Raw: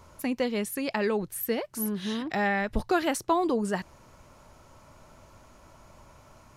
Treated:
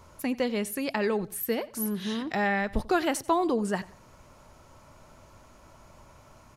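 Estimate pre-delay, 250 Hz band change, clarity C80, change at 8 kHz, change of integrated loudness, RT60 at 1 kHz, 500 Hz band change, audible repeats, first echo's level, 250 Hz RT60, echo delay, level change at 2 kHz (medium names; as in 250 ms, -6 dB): no reverb, 0.0 dB, no reverb, 0.0 dB, 0.0 dB, no reverb, 0.0 dB, 2, -20.0 dB, no reverb, 90 ms, 0.0 dB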